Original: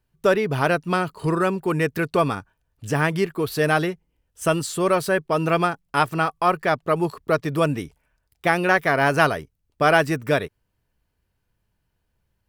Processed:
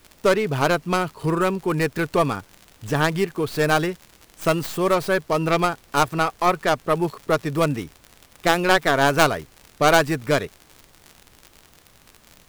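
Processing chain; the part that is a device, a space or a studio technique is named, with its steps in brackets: record under a worn stylus (tracing distortion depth 0.26 ms; crackle -30 dBFS; pink noise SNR 32 dB)

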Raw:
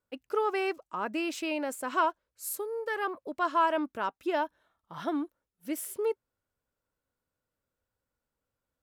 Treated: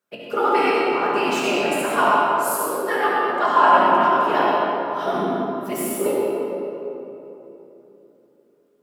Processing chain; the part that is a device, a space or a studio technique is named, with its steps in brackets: whispering ghost (whisperiser; HPF 440 Hz 6 dB/oct; reverb RT60 3.3 s, pre-delay 58 ms, DRR -4 dB); shoebox room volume 180 m³, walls furnished, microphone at 1.3 m; gain +5.5 dB

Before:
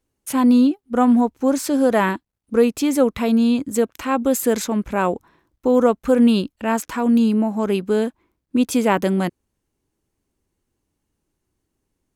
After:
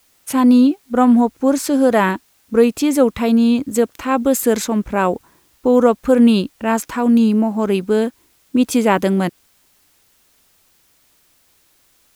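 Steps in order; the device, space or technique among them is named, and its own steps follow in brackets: plain cassette with noise reduction switched in (mismatched tape noise reduction decoder only; wow and flutter 18 cents; white noise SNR 41 dB); gain +3 dB

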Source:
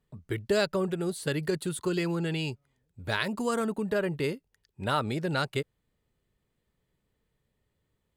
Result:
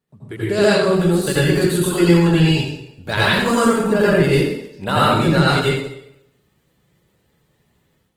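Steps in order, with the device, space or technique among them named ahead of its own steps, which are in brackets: far-field microphone of a smart speaker (reverb RT60 0.80 s, pre-delay 77 ms, DRR -7.5 dB; HPF 110 Hz 12 dB/oct; AGC gain up to 8.5 dB; Opus 20 kbps 48000 Hz)

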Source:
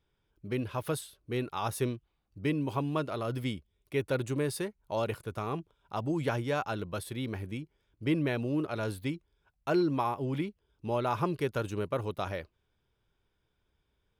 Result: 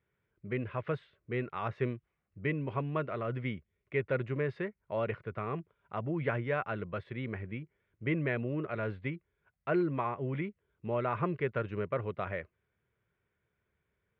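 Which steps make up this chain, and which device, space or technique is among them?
bass cabinet (speaker cabinet 90–2400 Hz, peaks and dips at 290 Hz -8 dB, 850 Hz -8 dB, 2000 Hz +6 dB); bell 6800 Hz +3.5 dB 0.89 oct

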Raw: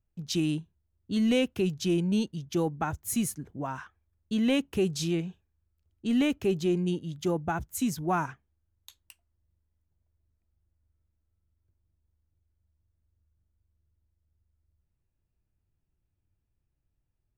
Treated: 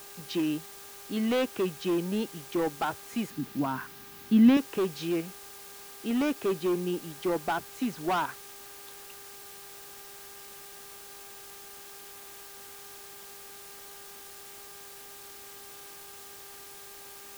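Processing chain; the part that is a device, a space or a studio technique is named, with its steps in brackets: aircraft radio (BPF 340–2400 Hz; hard clip -28 dBFS, distortion -12 dB; buzz 400 Hz, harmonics 4, -59 dBFS -3 dB/oct; white noise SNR 13 dB); 3.3–4.57 graphic EQ 125/250/500/8000 Hz +10/+11/-7/-6 dB; gain +4.5 dB

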